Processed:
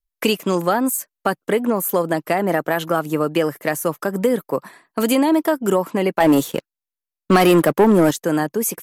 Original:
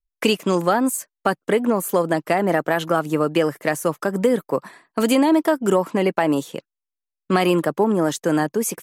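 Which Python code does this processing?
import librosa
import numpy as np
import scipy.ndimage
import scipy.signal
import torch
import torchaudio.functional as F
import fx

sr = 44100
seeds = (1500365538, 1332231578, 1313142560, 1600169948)

y = fx.peak_eq(x, sr, hz=13000.0, db=9.0, octaves=0.4)
y = fx.leveller(y, sr, passes=2, at=(6.2, 8.11))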